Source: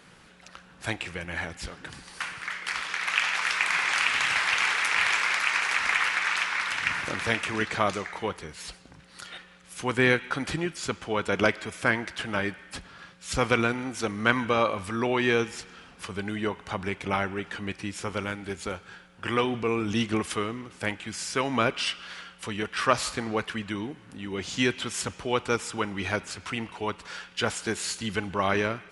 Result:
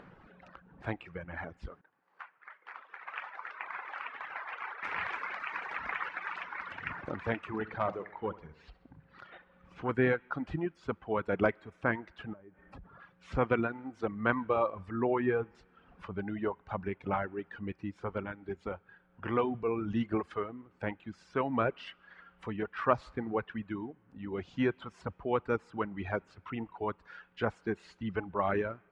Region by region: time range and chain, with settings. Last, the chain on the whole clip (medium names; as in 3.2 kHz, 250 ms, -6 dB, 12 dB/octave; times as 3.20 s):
1.81–4.83 s: high-pass 720 Hz + tilt EQ -3.5 dB/octave + upward expansion, over -49 dBFS
7.58–9.89 s: low-pass 5.2 kHz + feedback delay 65 ms, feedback 53%, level -9 dB + transformer saturation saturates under 1.9 kHz
12.33–13.00 s: tilt shelf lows +5 dB, about 1.2 kHz + compression 12:1, threshold -38 dBFS
14.90–15.55 s: low-pass 2.2 kHz + doubling 16 ms -13 dB
whole clip: reverb removal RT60 1.8 s; low-pass 1.3 kHz 12 dB/octave; upward compressor, threshold -46 dBFS; trim -2.5 dB